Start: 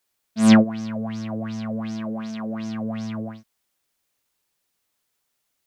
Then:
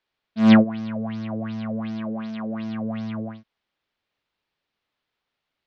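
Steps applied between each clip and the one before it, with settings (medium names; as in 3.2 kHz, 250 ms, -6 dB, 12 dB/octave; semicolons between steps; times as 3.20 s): low-pass 4 kHz 24 dB/octave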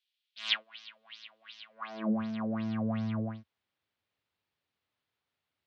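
dynamic bell 1.1 kHz, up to +5 dB, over -39 dBFS, Q 1; high-pass sweep 3.2 kHz -> 85 Hz, 1.68–2.24 s; trim -5.5 dB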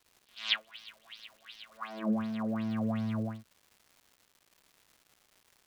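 crackle 370 per s -50 dBFS; pre-echo 104 ms -22.5 dB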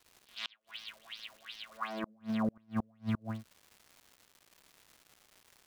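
inverted gate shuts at -25 dBFS, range -36 dB; trim +3 dB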